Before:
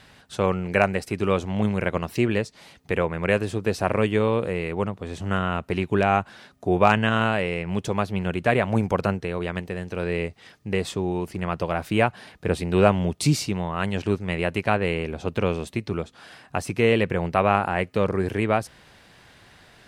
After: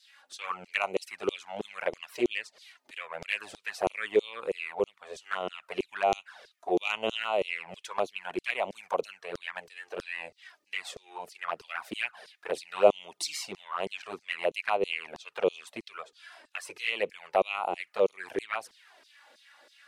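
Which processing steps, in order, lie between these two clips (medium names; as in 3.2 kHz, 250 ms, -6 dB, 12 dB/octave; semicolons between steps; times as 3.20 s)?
LFO high-pass saw down 3.1 Hz 350–5500 Hz; touch-sensitive flanger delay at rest 3.9 ms, full sweep at -19 dBFS; trim -4.5 dB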